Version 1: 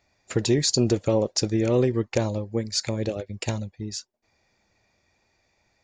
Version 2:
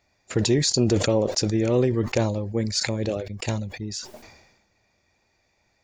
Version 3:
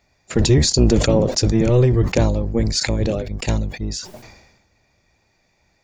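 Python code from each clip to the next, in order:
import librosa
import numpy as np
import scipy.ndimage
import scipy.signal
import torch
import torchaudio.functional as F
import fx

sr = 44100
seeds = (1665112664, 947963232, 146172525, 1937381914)

y1 = fx.sustainer(x, sr, db_per_s=53.0)
y2 = fx.octave_divider(y1, sr, octaves=1, level_db=2.0)
y2 = y2 * 10.0 ** (4.0 / 20.0)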